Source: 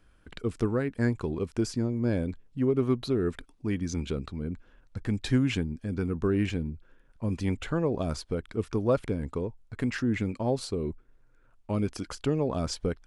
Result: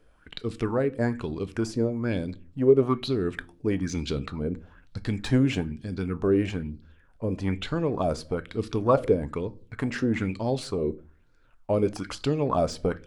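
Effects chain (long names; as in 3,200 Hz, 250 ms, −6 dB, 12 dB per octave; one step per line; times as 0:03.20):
de-essing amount 80%
0:07.25–0:07.65: high-shelf EQ 4,500 Hz −5.5 dB
speech leveller within 3 dB 2 s
rectangular room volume 300 cubic metres, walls furnished, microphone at 0.38 metres
auto-filter bell 1.1 Hz 450–4,700 Hz +13 dB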